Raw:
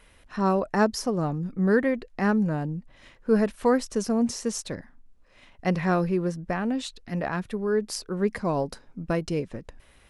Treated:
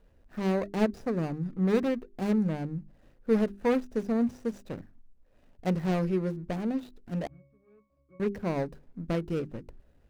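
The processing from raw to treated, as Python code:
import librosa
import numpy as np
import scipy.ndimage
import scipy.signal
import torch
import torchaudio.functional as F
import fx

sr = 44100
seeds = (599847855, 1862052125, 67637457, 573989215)

y = scipy.signal.medfilt(x, 41)
y = fx.hum_notches(y, sr, base_hz=50, count=8)
y = fx.octave_resonator(y, sr, note='C#', decay_s=0.55, at=(7.27, 8.2))
y = y * 10.0 ** (-2.0 / 20.0)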